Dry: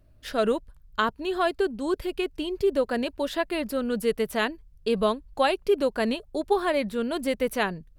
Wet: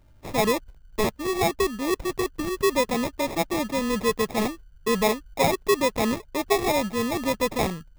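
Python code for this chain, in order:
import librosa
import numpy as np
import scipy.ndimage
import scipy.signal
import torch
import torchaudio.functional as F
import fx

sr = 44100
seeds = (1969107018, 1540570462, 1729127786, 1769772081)

p1 = np.clip(x, -10.0 ** (-25.0 / 20.0), 10.0 ** (-25.0 / 20.0))
p2 = x + F.gain(torch.from_numpy(p1), -10.0).numpy()
y = fx.sample_hold(p2, sr, seeds[0], rate_hz=1500.0, jitter_pct=0)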